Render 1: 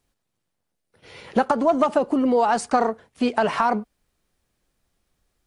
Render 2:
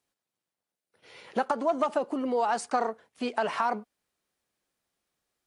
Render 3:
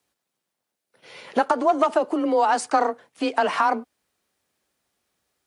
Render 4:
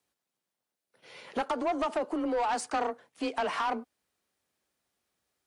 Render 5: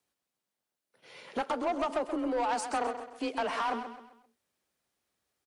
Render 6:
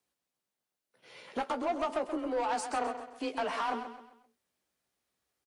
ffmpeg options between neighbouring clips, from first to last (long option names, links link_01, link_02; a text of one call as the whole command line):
ffmpeg -i in.wav -af "highpass=frequency=370:poles=1,volume=-6dB" out.wav
ffmpeg -i in.wav -af "afreqshift=23,volume=7dB" out.wav
ffmpeg -i in.wav -af "asoftclip=type=tanh:threshold=-18dB,volume=-6dB" out.wav
ffmpeg -i in.wav -af "aecho=1:1:131|262|393|524:0.335|0.127|0.0484|0.0184,volume=-1.5dB" out.wav
ffmpeg -i in.wav -filter_complex "[0:a]asplit=2[link_01][link_02];[link_02]adelay=16,volume=-9dB[link_03];[link_01][link_03]amix=inputs=2:normalize=0,volume=-2dB" out.wav